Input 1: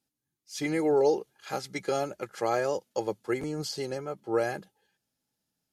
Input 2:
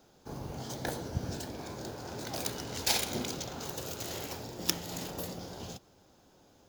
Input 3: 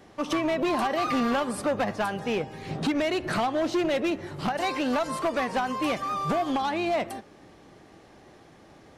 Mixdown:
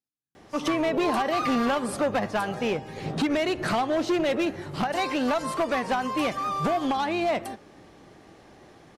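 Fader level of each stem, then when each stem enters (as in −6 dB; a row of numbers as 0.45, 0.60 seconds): −13.0 dB, muted, +1.0 dB; 0.00 s, muted, 0.35 s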